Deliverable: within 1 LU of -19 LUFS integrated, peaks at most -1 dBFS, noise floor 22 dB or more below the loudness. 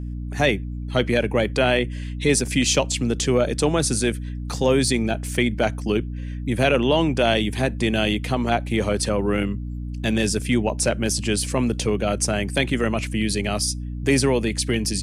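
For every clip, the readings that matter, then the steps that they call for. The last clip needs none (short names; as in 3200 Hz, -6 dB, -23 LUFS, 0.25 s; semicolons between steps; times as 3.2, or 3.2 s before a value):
hum 60 Hz; harmonics up to 300 Hz; hum level -27 dBFS; loudness -22.0 LUFS; peak -6.5 dBFS; loudness target -19.0 LUFS
-> notches 60/120/180/240/300 Hz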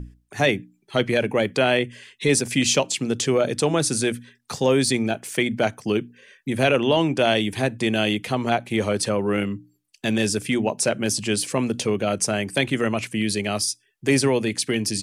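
hum none; loudness -22.5 LUFS; peak -7.5 dBFS; loudness target -19.0 LUFS
-> gain +3.5 dB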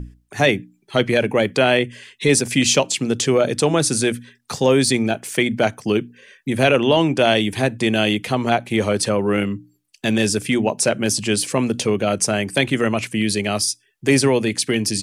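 loudness -19.0 LUFS; peak -4.0 dBFS; noise floor -62 dBFS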